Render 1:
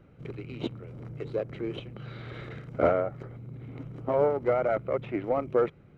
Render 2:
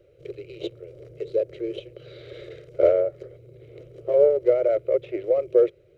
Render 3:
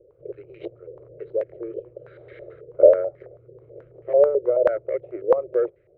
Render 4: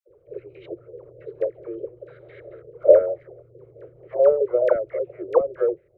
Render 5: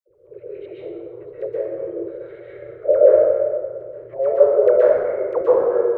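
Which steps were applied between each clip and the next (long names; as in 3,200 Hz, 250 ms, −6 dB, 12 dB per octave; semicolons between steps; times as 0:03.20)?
drawn EQ curve 100 Hz 0 dB, 150 Hz −6 dB, 240 Hz −29 dB, 350 Hz +10 dB, 580 Hz +14 dB, 830 Hz −13 dB, 2,300 Hz +3 dB, 4,000 Hz +9 dB; level −5 dB
low-pass on a step sequencer 9.2 Hz 470–1,900 Hz; level −5 dB
all-pass dispersion lows, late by 89 ms, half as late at 720 Hz
dense smooth reverb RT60 1.7 s, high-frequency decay 0.55×, pre-delay 110 ms, DRR −8 dB; level −4.5 dB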